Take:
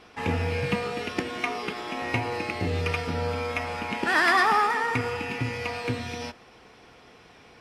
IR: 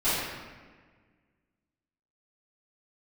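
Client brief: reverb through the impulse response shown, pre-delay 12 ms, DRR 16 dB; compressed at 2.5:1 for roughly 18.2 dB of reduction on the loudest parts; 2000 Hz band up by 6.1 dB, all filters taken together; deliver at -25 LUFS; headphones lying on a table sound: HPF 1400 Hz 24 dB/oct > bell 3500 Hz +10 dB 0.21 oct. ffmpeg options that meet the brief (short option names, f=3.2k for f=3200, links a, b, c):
-filter_complex "[0:a]equalizer=f=2k:t=o:g=7.5,acompressor=threshold=-42dB:ratio=2.5,asplit=2[a][b];[1:a]atrim=start_sample=2205,adelay=12[c];[b][c]afir=irnorm=-1:irlink=0,volume=-29.5dB[d];[a][d]amix=inputs=2:normalize=0,highpass=f=1.4k:w=0.5412,highpass=f=1.4k:w=1.3066,equalizer=f=3.5k:t=o:w=0.21:g=10,volume=14dB"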